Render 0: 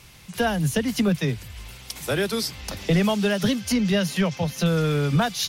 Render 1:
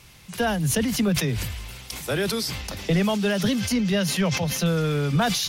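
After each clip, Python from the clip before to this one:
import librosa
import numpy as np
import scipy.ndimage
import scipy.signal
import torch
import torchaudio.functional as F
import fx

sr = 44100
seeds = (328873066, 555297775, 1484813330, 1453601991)

y = fx.sustainer(x, sr, db_per_s=34.0)
y = F.gain(torch.from_numpy(y), -1.5).numpy()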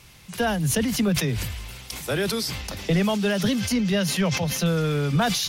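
y = x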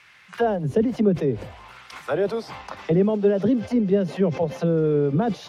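y = fx.low_shelf(x, sr, hz=200.0, db=7.0)
y = fx.auto_wah(y, sr, base_hz=370.0, top_hz=1800.0, q=2.3, full_db=-16.0, direction='down')
y = F.gain(torch.from_numpy(y), 8.0).numpy()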